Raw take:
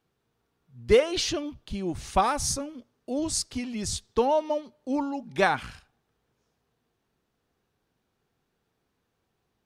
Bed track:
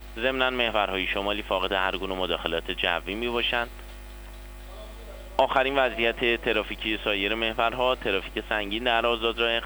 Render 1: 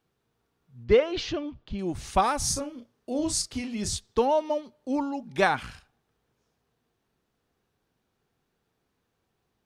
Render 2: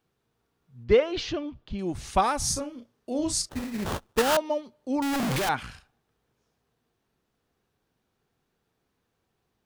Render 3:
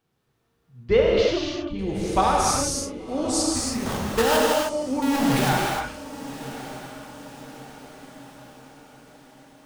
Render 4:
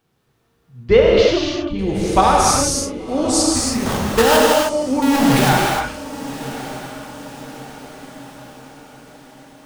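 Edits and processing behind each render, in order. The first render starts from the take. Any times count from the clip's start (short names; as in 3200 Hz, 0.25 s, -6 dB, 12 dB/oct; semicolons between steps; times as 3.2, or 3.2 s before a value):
0.84–1.79 air absorption 190 m; 2.38–3.95 doubler 34 ms -8 dB
3.49–4.37 sample-rate reducer 2200 Hz, jitter 20%; 5.02–5.49 infinite clipping
diffused feedback echo 1.119 s, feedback 52%, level -14.5 dB; non-linear reverb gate 0.34 s flat, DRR -3 dB
gain +7 dB; limiter -1 dBFS, peak gain reduction 1.5 dB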